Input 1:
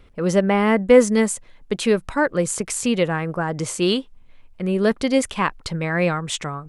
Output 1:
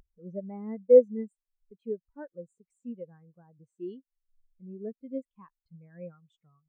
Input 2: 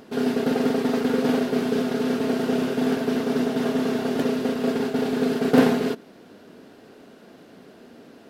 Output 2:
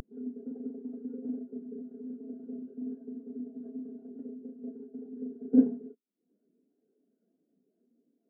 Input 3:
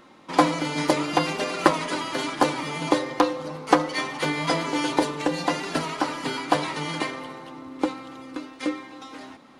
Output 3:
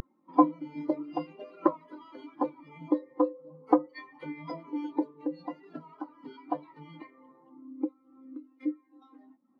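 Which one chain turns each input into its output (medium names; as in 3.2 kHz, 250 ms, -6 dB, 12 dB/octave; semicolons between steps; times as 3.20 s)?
upward compressor, threshold -21 dBFS; spectral contrast expander 2.5:1; trim -6 dB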